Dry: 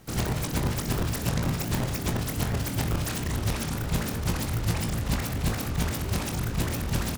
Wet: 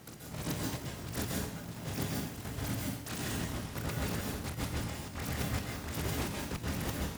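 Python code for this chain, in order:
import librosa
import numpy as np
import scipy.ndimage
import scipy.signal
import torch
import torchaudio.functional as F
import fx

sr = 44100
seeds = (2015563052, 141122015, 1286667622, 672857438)

y = scipy.signal.sosfilt(scipy.signal.butter(2, 55.0, 'highpass', fs=sr, output='sos'), x)
y = fx.low_shelf(y, sr, hz=75.0, db=-6.5)
y = fx.over_compress(y, sr, threshold_db=-34.0, ratio=-0.5)
y = fx.step_gate(y, sr, bpm=196, pattern='x...xxxxx', floor_db=-12.0, edge_ms=4.5)
y = fx.rev_plate(y, sr, seeds[0], rt60_s=0.63, hf_ratio=0.95, predelay_ms=120, drr_db=-1.5)
y = y * librosa.db_to_amplitude(-4.5)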